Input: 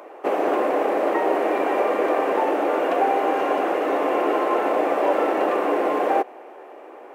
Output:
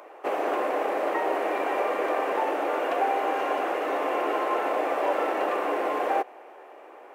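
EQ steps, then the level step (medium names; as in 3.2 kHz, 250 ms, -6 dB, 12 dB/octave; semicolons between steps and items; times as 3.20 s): bass shelf 410 Hz -10.5 dB; -2.0 dB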